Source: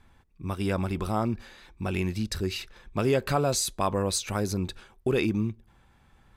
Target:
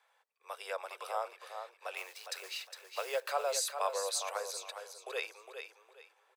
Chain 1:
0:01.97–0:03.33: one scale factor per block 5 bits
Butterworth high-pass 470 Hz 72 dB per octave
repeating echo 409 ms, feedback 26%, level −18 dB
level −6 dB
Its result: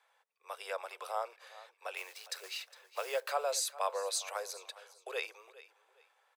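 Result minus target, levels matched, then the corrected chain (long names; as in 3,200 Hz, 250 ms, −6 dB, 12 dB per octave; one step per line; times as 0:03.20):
echo-to-direct −10 dB
0:01.97–0:03.33: one scale factor per block 5 bits
Butterworth high-pass 470 Hz 72 dB per octave
repeating echo 409 ms, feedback 26%, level −8 dB
level −6 dB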